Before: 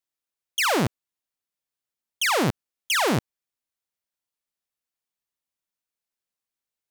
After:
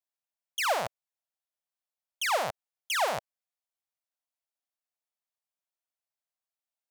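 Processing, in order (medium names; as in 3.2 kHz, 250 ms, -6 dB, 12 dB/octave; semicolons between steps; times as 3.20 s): resonant low shelf 450 Hz -12.5 dB, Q 3; trim -7.5 dB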